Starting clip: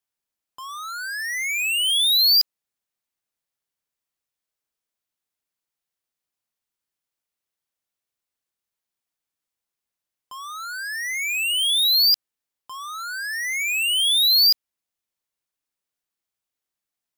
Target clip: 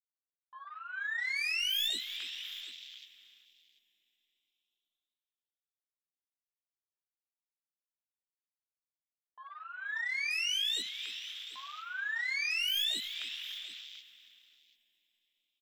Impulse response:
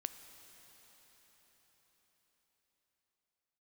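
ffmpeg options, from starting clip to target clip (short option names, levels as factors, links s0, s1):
-filter_complex "[0:a]agate=range=0.316:threshold=0.0251:ratio=16:detection=peak,aresample=8000,aresample=44100,aeval=exprs='0.15*(cos(1*acos(clip(val(0)/0.15,-1,1)))-cos(1*PI/2))+0.0168*(cos(3*acos(clip(val(0)/0.15,-1,1)))-cos(3*PI/2))+0.0422*(cos(6*acos(clip(val(0)/0.15,-1,1)))-cos(6*PI/2))+0.0335*(cos(8*acos(clip(val(0)/0.15,-1,1)))-cos(8*PI/2))':c=same,highpass=f=180:w=0.5412,highpass=f=180:w=1.3066,asoftclip=type=tanh:threshold=0.2,asplit=2[s0][s1];[1:a]atrim=start_sample=2205,lowshelf=f=110:g=4.5,adelay=18[s2];[s1][s2]afir=irnorm=-1:irlink=0,volume=0.794[s3];[s0][s3]amix=inputs=2:normalize=0,acompressor=threshold=0.0178:ratio=2.5,afwtdn=0.00447,atempo=1.1,aecho=1:1:292|737:0.178|0.133"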